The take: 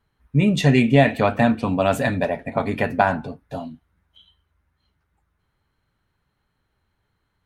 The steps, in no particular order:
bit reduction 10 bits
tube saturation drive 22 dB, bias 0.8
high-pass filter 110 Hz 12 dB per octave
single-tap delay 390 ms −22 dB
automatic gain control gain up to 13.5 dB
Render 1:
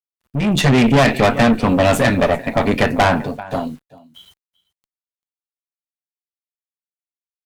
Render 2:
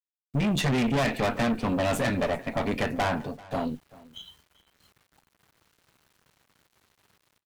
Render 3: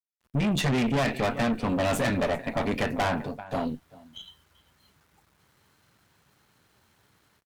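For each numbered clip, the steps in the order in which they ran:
high-pass filter, then bit reduction, then single-tap delay, then tube saturation, then automatic gain control
automatic gain control, then high-pass filter, then tube saturation, then bit reduction, then single-tap delay
high-pass filter, then automatic gain control, then bit reduction, then single-tap delay, then tube saturation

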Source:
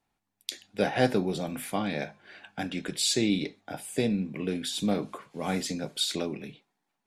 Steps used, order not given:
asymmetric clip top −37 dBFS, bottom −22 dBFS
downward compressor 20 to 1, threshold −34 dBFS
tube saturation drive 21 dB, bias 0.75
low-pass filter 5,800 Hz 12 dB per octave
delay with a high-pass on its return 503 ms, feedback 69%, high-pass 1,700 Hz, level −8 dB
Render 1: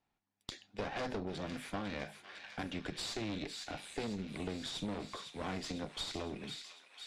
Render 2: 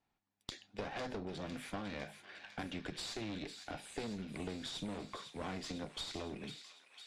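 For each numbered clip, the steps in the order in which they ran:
asymmetric clip, then delay with a high-pass on its return, then tube saturation, then downward compressor, then low-pass filter
asymmetric clip, then downward compressor, then delay with a high-pass on its return, then tube saturation, then low-pass filter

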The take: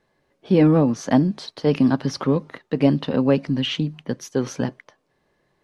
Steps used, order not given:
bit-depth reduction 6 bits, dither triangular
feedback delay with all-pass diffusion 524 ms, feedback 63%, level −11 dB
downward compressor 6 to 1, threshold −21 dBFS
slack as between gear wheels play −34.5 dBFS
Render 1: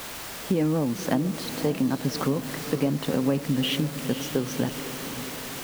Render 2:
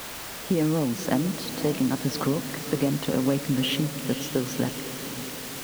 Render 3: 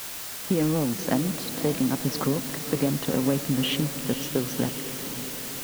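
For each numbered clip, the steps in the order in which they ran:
bit-depth reduction, then slack as between gear wheels, then downward compressor, then feedback delay with all-pass diffusion
downward compressor, then bit-depth reduction, then feedback delay with all-pass diffusion, then slack as between gear wheels
downward compressor, then slack as between gear wheels, then bit-depth reduction, then feedback delay with all-pass diffusion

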